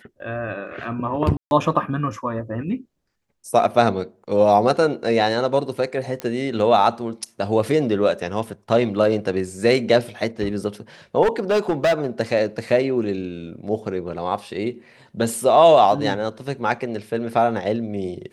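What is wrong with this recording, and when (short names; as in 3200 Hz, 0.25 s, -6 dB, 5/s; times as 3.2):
1.37–1.51 gap 0.141 s
6.2 pop -13 dBFS
11.22–12.07 clipped -14 dBFS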